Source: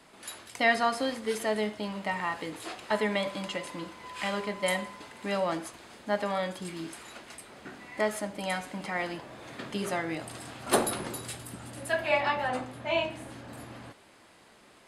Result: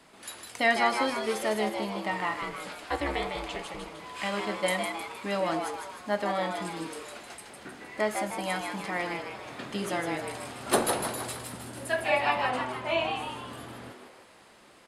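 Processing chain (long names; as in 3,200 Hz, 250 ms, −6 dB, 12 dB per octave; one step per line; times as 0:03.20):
0:02.41–0:03.99: ring modulation 140 Hz
echo with shifted repeats 155 ms, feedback 50%, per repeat +130 Hz, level −5.5 dB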